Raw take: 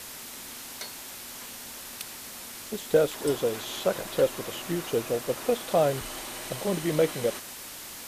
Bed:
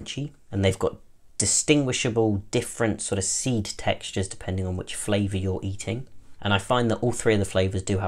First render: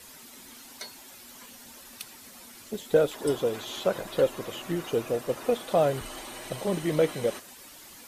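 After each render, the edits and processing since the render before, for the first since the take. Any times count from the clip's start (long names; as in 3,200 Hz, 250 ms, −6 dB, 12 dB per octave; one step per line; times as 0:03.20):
broadband denoise 10 dB, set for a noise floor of −42 dBFS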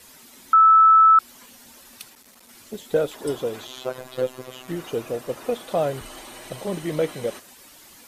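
0:00.53–0:01.19: beep over 1,310 Hz −9.5 dBFS
0:02.09–0:02.49: saturating transformer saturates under 1,800 Hz
0:03.67–0:04.68: phases set to zero 128 Hz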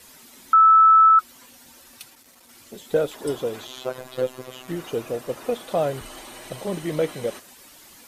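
0:01.09–0:02.87: notch comb filter 210 Hz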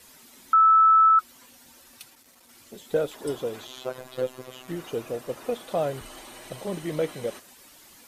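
level −3.5 dB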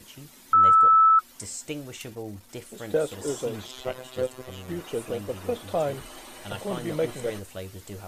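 mix in bed −15 dB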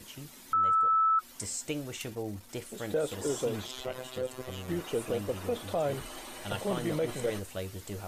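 brickwall limiter −21.5 dBFS, peak gain reduction 10 dB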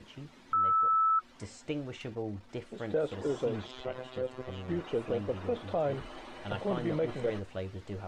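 low-pass filter 4,700 Hz 12 dB per octave
high-shelf EQ 3,500 Hz −10 dB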